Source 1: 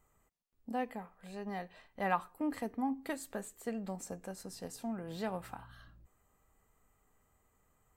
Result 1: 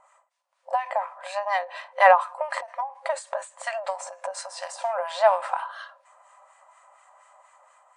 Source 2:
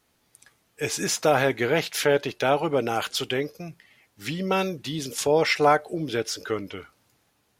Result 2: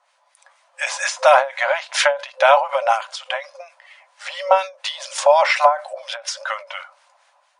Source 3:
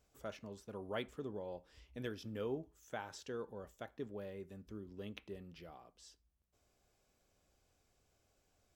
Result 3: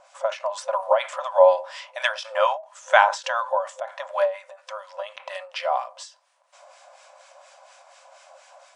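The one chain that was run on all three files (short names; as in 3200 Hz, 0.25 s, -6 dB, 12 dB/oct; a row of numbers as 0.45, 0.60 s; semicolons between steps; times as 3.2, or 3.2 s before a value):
FFT band-pass 520–10000 Hz; high shelf 2300 Hz -10.5 dB; AGC gain up to 4.5 dB; small resonant body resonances 1000 Hz, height 12 dB, ringing for 65 ms; harmonic tremolo 4.2 Hz, depth 70%, crossover 1200 Hz; maximiser +14.5 dB; ending taper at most 170 dB/s; normalise peaks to -1.5 dBFS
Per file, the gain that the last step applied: +7.5, -0.5, +17.0 dB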